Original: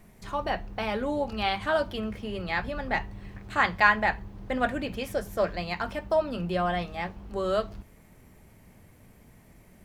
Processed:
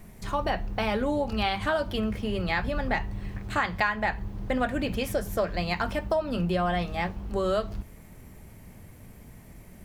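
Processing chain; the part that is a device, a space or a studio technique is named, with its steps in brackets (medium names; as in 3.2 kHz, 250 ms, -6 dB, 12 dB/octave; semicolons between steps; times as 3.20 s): ASMR close-microphone chain (bass shelf 180 Hz +5 dB; compression 6:1, threshold -26 dBFS, peak gain reduction 11.5 dB; treble shelf 7.3 kHz +4 dB); trim +3.5 dB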